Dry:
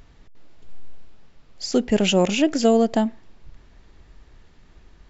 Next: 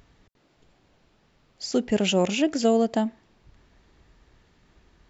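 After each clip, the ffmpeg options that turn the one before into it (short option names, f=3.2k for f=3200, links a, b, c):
-af "highpass=f=71:p=1,volume=-3.5dB"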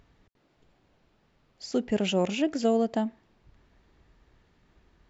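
-af "highshelf=f=4.6k:g=-7,volume=-3.5dB"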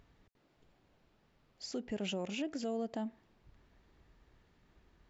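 -af "alimiter=level_in=1.5dB:limit=-24dB:level=0:latency=1:release=214,volume=-1.5dB,volume=-4dB"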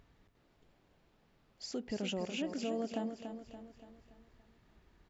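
-af "aecho=1:1:286|572|858|1144|1430|1716:0.398|0.195|0.0956|0.0468|0.023|0.0112"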